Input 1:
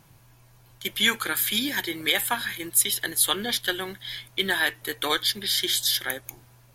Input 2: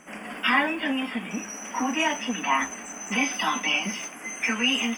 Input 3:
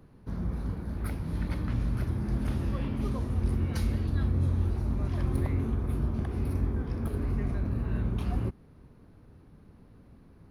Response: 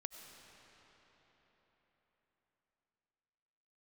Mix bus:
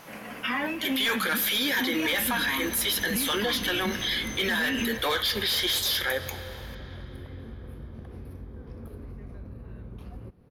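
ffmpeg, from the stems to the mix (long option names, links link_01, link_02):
-filter_complex "[0:a]flanger=delay=4.5:depth=3.7:regen=-75:speed=0.63:shape=sinusoidal,asplit=2[link_01][link_02];[link_02]highpass=frequency=720:poles=1,volume=22dB,asoftclip=type=tanh:threshold=-10dB[link_03];[link_01][link_03]amix=inputs=2:normalize=0,lowpass=frequency=3700:poles=1,volume=-6dB,volume=-0.5dB,asplit=2[link_04][link_05];[link_05]volume=-6.5dB[link_06];[1:a]asubboost=boost=10.5:cutoff=230,alimiter=limit=-15.5dB:level=0:latency=1:release=37,volume=-4dB[link_07];[2:a]acompressor=threshold=-35dB:ratio=6,adelay=1800,volume=-5dB,asplit=2[link_08][link_09];[link_09]volume=-8dB[link_10];[3:a]atrim=start_sample=2205[link_11];[link_06][link_10]amix=inputs=2:normalize=0[link_12];[link_12][link_11]afir=irnorm=-1:irlink=0[link_13];[link_04][link_07][link_08][link_13]amix=inputs=4:normalize=0,equalizer=frequency=500:width_type=o:width=0.33:gain=8,equalizer=frequency=8000:width_type=o:width=0.33:gain=-6,equalizer=frequency=12500:width_type=o:width=0.33:gain=6,alimiter=limit=-19dB:level=0:latency=1:release=47"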